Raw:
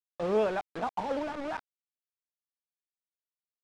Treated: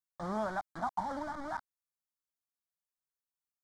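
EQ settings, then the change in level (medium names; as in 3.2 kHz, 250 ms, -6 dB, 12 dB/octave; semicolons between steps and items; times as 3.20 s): static phaser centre 1.1 kHz, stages 4; 0.0 dB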